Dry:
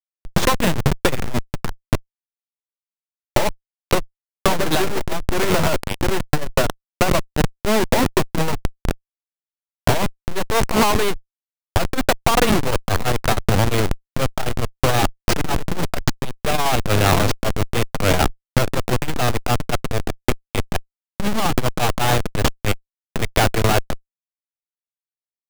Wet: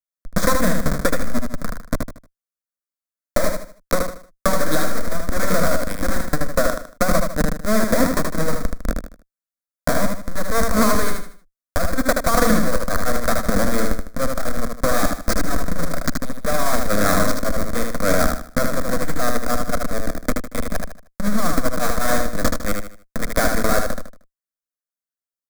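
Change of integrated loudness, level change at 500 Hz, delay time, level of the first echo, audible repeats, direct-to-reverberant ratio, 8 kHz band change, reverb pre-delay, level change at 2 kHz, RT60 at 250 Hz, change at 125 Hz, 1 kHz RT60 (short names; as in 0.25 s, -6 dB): -1.0 dB, 0.0 dB, 77 ms, -4.5 dB, 4, none, +1.0 dB, none, -0.5 dB, none, -6.0 dB, none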